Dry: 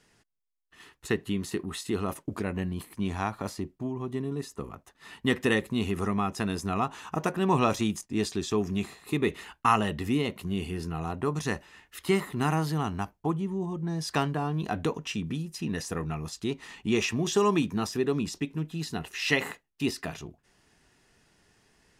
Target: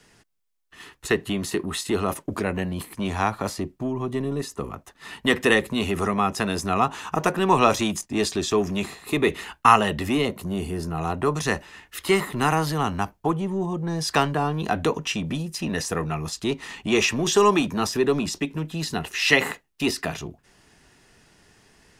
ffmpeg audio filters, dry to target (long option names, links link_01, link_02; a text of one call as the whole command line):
ffmpeg -i in.wav -filter_complex "[0:a]asettb=1/sr,asplit=3[link_01][link_02][link_03];[link_01]atrim=end=10.254[link_04];[link_02]atrim=start=10.25:end=10.98,asetpts=PTS-STARTPTS,afade=type=in:duration=0.004:curve=qsin,afade=type=out:start_time=0.726:duration=0.004:curve=qsin,equalizer=frequency=2700:width_type=o:width=1.5:gain=-8.5[link_05];[link_03]atrim=start=10.976[link_06];[link_04][link_05]acrossfade=duration=0.004:curve1=hsin:curve2=qsin[link_07];[link_07][link_06]acrossfade=duration=0.004:curve1=qsin:curve2=hsin,acrossover=split=330|810|2300[link_08][link_09][link_10][link_11];[link_08]asoftclip=type=tanh:threshold=-34.5dB[link_12];[link_12][link_09][link_10][link_11]amix=inputs=4:normalize=0,volume=8dB" out.wav